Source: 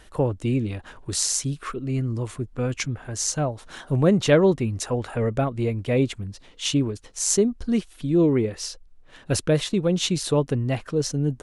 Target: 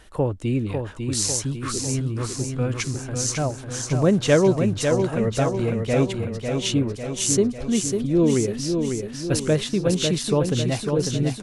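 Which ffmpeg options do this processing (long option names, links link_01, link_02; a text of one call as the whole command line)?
ffmpeg -i in.wav -af "aecho=1:1:549|1098|1647|2196|2745|3294|3843|4392:0.531|0.303|0.172|0.0983|0.056|0.0319|0.0182|0.0104" out.wav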